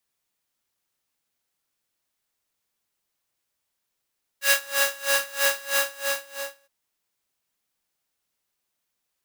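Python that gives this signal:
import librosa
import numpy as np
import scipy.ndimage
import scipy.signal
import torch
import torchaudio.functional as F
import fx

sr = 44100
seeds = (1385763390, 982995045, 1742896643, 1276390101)

y = fx.sub_patch_tremolo(sr, seeds[0], note=73, wave='square', wave2='saw', interval_st=0, detune_cents=16, level2_db=-9.0, sub_db=-10.5, noise_db=-2.0, kind='highpass', cutoff_hz=820.0, q=1.3, env_oct=1.0, env_decay_s=0.27, env_sustain_pct=40, attack_ms=124.0, decay_s=0.07, sustain_db=-5, release_s=0.99, note_s=1.28, lfo_hz=3.1, tremolo_db=23)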